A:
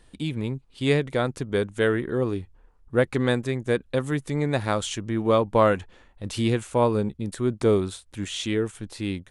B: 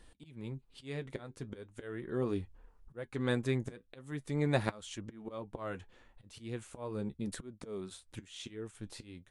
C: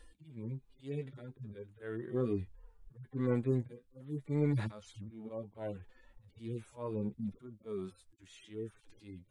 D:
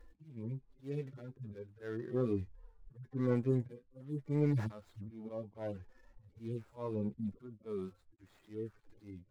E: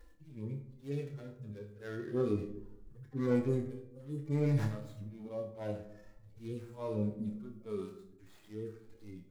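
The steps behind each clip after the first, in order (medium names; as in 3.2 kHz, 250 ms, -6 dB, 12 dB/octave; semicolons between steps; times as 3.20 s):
slow attack 767 ms; flange 0.4 Hz, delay 3.5 ms, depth 6 ms, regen -60%; trim +1 dB
harmonic-percussive separation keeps harmonic; in parallel at -11.5 dB: saturation -31 dBFS, distortion -10 dB
median filter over 15 samples
treble shelf 3.1 kHz +7.5 dB; on a send: flutter echo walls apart 4.9 m, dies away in 0.25 s; on the sum: algorithmic reverb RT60 0.81 s, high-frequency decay 0.3×, pre-delay 20 ms, DRR 10 dB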